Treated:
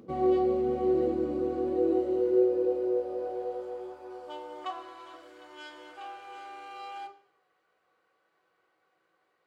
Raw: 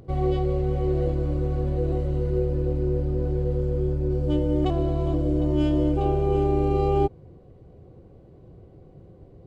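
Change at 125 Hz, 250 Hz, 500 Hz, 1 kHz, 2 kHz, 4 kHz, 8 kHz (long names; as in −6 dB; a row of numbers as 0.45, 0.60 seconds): below −25 dB, −5.5 dB, −2.5 dB, −4.5 dB, −0.5 dB, −5.0 dB, can't be measured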